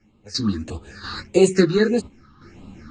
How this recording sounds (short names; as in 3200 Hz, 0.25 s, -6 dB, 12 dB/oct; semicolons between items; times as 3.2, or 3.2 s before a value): phasing stages 6, 1.6 Hz, lowest notch 590–1600 Hz; random-step tremolo 2.9 Hz, depth 85%; a shimmering, thickened sound